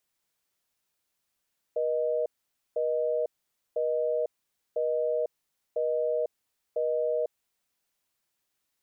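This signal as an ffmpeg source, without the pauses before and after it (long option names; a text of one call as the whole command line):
ffmpeg -f lavfi -i "aevalsrc='0.0422*(sin(2*PI*480*t)+sin(2*PI*620*t))*clip(min(mod(t,1),0.5-mod(t,1))/0.005,0,1)':duration=5.99:sample_rate=44100" out.wav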